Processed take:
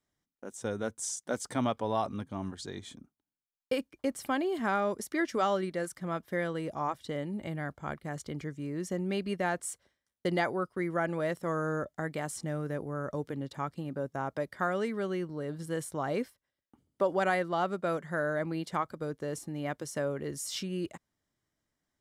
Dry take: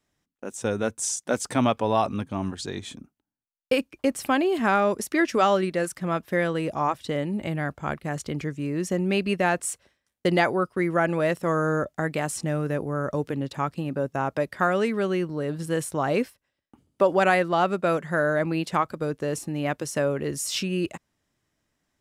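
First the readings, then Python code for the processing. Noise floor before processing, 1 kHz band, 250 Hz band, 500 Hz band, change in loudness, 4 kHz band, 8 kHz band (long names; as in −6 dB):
−81 dBFS, −8.0 dB, −8.0 dB, −8.0 dB, −8.0 dB, −8.5 dB, −8.0 dB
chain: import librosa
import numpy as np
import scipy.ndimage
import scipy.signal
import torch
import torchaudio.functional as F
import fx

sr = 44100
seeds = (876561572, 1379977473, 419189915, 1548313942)

y = fx.notch(x, sr, hz=2600.0, q=6.9)
y = y * 10.0 ** (-8.0 / 20.0)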